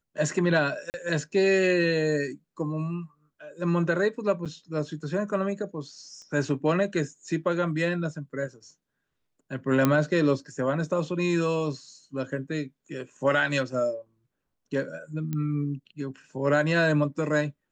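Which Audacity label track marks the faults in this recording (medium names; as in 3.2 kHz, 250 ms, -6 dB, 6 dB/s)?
0.900000	0.940000	dropout 39 ms
4.450000	4.460000	dropout 7 ms
6.220000	6.220000	pop -36 dBFS
9.850000	9.850000	pop -8 dBFS
15.330000	15.330000	pop -19 dBFS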